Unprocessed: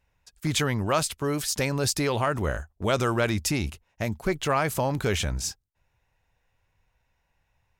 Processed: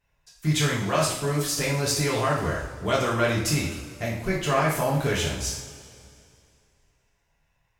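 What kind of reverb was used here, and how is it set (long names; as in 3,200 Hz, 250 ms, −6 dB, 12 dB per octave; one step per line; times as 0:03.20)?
coupled-rooms reverb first 0.57 s, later 2.5 s, from −16 dB, DRR −6 dB
level −5 dB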